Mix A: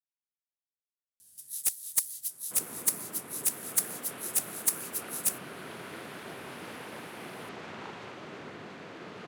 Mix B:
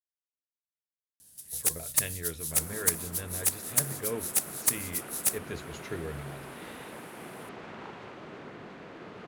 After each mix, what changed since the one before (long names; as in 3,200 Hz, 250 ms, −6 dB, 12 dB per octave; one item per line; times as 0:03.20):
speech: unmuted
first sound +8.5 dB
master: add high-shelf EQ 2,700 Hz −7.5 dB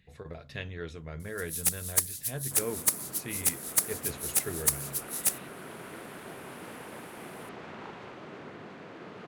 speech: entry −1.45 s